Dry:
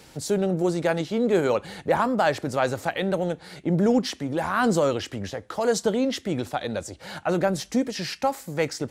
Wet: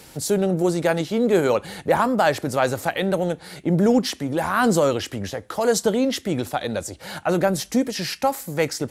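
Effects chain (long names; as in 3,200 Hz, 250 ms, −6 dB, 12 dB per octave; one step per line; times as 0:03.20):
parametric band 12,000 Hz +9 dB 0.76 octaves
level +3 dB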